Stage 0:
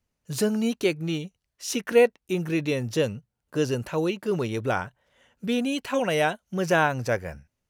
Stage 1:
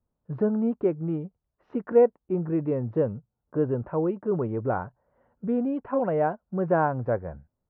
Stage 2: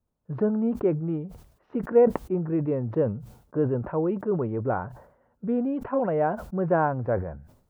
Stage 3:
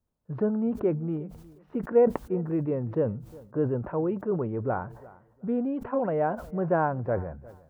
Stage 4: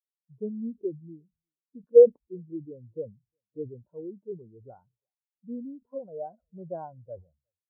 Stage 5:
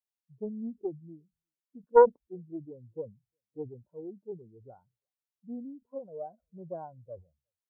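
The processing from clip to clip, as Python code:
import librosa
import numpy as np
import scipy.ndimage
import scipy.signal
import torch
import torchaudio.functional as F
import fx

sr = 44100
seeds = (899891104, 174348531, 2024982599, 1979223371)

y1 = scipy.signal.sosfilt(scipy.signal.butter(4, 1200.0, 'lowpass', fs=sr, output='sos'), x)
y2 = fx.sustainer(y1, sr, db_per_s=93.0)
y3 = fx.echo_feedback(y2, sr, ms=357, feedback_pct=21, wet_db=-21.0)
y3 = F.gain(torch.from_numpy(y3), -2.0).numpy()
y4 = fx.spectral_expand(y3, sr, expansion=2.5)
y4 = F.gain(torch.from_numpy(y4), 5.5).numpy()
y5 = fx.doppler_dist(y4, sr, depth_ms=0.32)
y5 = F.gain(torch.from_numpy(y5), -3.0).numpy()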